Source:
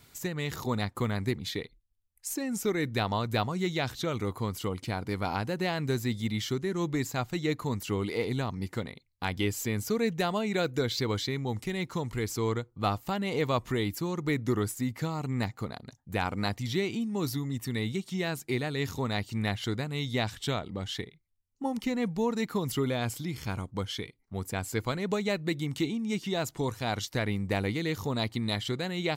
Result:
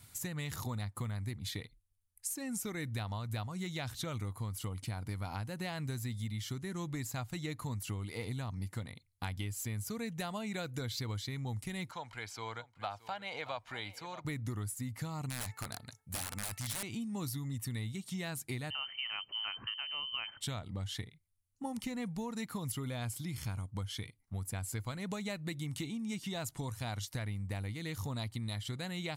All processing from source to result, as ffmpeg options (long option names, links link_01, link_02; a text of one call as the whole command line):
ffmpeg -i in.wav -filter_complex "[0:a]asettb=1/sr,asplit=3[link_01][link_02][link_03];[link_01]atrim=end=11.914[link_04];[link_02]atrim=start=11.91:end=14.25,asetpts=PTS-STARTPTS,afade=type=in:duration=0.004:curve=qsin,afade=type=out:start_time=2.336:duration=0.004:curve=qsin,acrossover=split=400 4900:gain=0.0794 1 0.0794[link_05][link_06][link_07];[link_05][link_06][link_07]amix=inputs=3:normalize=0,aecho=1:1:1.3:0.4,atrim=end_sample=103194,aecho=1:1:624:0.133,atrim=end_sample=103194[link_08];[link_03]atrim=start=14.246[link_09];[link_04][link_08]acrossfade=duration=0.004:curve1=hsin:curve2=qsin[link_10];[link_10][link_09]acrossfade=duration=0.004:curve1=qsin:curve2=hsin,asettb=1/sr,asplit=3[link_11][link_12][link_13];[link_11]atrim=end=15.294[link_14];[link_12]atrim=start=15.29:end=16.83,asetpts=PTS-STARTPTS,afade=type=in:duration=0.004:curve=qsin,afade=type=out:start_time=1.536:duration=0.004:curve=qsin,tiltshelf=frequency=640:gain=-5,bandreject=frequency=439.6:width_type=h:width=4,bandreject=frequency=879.2:width_type=h:width=4,bandreject=frequency=1318.8:width_type=h:width=4,bandreject=frequency=1758.4:width_type=h:width=4,bandreject=frequency=2198:width_type=h:width=4,bandreject=frequency=2637.6:width_type=h:width=4,aeval=exprs='(mod(21.1*val(0)+1,2)-1)/21.1':channel_layout=same[link_15];[link_13]atrim=start=16.826[link_16];[link_14][link_15]acrossfade=duration=0.004:curve1=hsin:curve2=qsin[link_17];[link_17][link_16]acrossfade=duration=0.004:curve1=qsin:curve2=hsin,asettb=1/sr,asplit=3[link_18][link_19][link_20];[link_18]atrim=end=18.704[link_21];[link_19]atrim=start=18.7:end=20.41,asetpts=PTS-STARTPTS,afade=type=in:duration=0.004:curve=qsin,afade=type=out:start_time=1.706:duration=0.004:curve=qsin,highpass=100,lowpass=frequency=2700:width_type=q:width=0.5098,lowpass=frequency=2700:width_type=q:width=0.6013,lowpass=frequency=2700:width_type=q:width=0.9,lowpass=frequency=2700:width_type=q:width=2.563,afreqshift=-3200[link_22];[link_20]atrim=start=20.406[link_23];[link_21][link_22]acrossfade=duration=0.004:curve1=hsin:curve2=qsin[link_24];[link_24][link_23]acrossfade=duration=0.004:curve1=qsin:curve2=hsin,equalizer=frequency=100:width_type=o:width=0.67:gain=9,equalizer=frequency=400:width_type=o:width=0.67:gain=-8,equalizer=frequency=10000:width_type=o:width=0.67:gain=11,acompressor=threshold=-32dB:ratio=6,volume=-3.5dB" out.wav